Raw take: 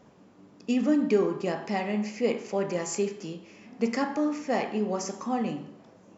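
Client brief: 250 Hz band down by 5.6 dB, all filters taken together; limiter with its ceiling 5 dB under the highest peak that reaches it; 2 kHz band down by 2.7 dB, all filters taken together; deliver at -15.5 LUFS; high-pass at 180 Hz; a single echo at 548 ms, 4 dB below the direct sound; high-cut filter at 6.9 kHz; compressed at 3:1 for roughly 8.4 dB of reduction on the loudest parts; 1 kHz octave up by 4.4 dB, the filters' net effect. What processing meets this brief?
high-pass 180 Hz; low-pass 6.9 kHz; peaking EQ 250 Hz -6 dB; peaking EQ 1 kHz +7.5 dB; peaking EQ 2 kHz -5 dB; compression 3:1, threshold -32 dBFS; peak limiter -26.5 dBFS; delay 548 ms -4 dB; trim +20.5 dB

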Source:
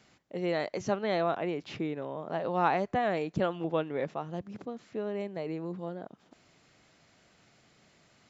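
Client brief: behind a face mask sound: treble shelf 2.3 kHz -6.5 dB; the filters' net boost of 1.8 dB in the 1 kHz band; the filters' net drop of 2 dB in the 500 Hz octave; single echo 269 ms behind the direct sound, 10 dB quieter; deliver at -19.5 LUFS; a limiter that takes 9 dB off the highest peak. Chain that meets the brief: peaking EQ 500 Hz -4 dB; peaking EQ 1 kHz +5.5 dB; peak limiter -20.5 dBFS; treble shelf 2.3 kHz -6.5 dB; delay 269 ms -10 dB; trim +15.5 dB

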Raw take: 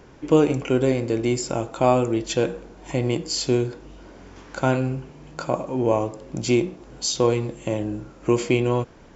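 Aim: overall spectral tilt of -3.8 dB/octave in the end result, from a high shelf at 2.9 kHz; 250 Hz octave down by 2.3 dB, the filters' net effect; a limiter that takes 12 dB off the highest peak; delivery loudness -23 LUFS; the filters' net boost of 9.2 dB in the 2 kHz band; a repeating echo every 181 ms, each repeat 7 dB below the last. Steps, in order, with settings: peaking EQ 250 Hz -3.5 dB; peaking EQ 2 kHz +8.5 dB; treble shelf 2.9 kHz +8 dB; peak limiter -15.5 dBFS; feedback delay 181 ms, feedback 45%, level -7 dB; trim +4 dB

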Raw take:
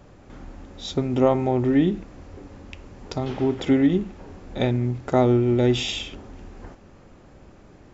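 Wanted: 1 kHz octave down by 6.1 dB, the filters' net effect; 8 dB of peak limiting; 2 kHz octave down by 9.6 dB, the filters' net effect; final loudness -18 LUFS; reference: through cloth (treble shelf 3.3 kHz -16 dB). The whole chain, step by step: peaking EQ 1 kHz -6.5 dB; peaking EQ 2 kHz -4.5 dB; peak limiter -16 dBFS; treble shelf 3.3 kHz -16 dB; trim +8 dB

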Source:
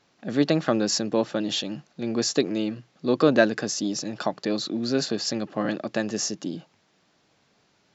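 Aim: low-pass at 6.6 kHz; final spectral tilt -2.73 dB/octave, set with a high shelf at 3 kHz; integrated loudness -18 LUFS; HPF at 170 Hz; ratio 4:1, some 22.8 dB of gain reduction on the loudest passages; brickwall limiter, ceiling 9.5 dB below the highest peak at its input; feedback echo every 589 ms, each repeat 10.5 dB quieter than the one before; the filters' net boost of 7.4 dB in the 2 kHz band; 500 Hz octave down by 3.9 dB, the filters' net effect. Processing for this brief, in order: high-pass 170 Hz; low-pass 6.6 kHz; peaking EQ 500 Hz -5.5 dB; peaking EQ 2 kHz +9 dB; treble shelf 3 kHz +4.5 dB; compression 4:1, threshold -40 dBFS; peak limiter -31 dBFS; feedback delay 589 ms, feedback 30%, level -10.5 dB; trim +24 dB

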